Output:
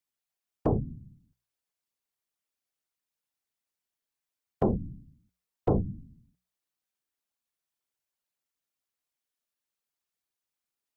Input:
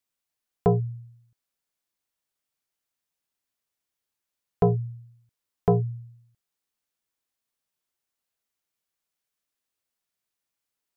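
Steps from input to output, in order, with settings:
random phases in short frames
mains-hum notches 60/120/180 Hz
level −4.5 dB

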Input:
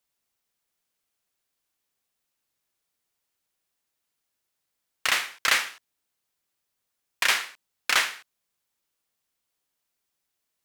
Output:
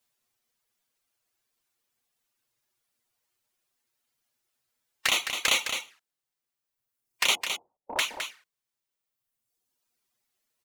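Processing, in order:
0:07.35–0:07.99: Chebyshev low-pass filter 880 Hz, order 5
reverb reduction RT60 1.6 s
harmonic and percussive parts rebalanced harmonic +4 dB
in parallel at +2 dB: brickwall limiter −14.5 dBFS, peak gain reduction 8 dB
on the sum: flanger swept by the level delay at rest 8.4 ms, full sweep at −18 dBFS
on a send: single-tap delay 212 ms −7.5 dB
on the sum: level −2.5 dB

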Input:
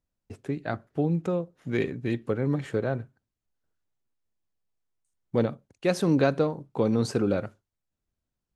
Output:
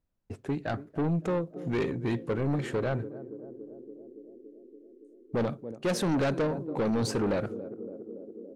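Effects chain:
feedback echo with a band-pass in the loop 283 ms, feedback 83%, band-pass 350 Hz, level −17 dB
soft clipping −26.5 dBFS, distortion −7 dB
one half of a high-frequency compander decoder only
level +3 dB

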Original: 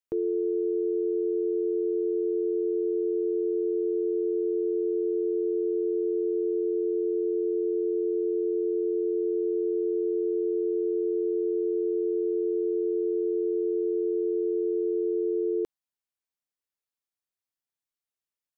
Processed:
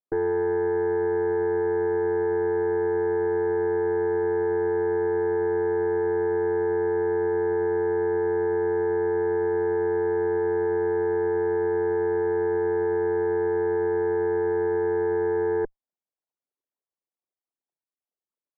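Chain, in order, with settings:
spectral envelope exaggerated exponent 3
flat-topped band-pass 450 Hz, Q 0.61
harmonic generator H 4 −15 dB, 5 −32 dB, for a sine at −21 dBFS
level +3 dB

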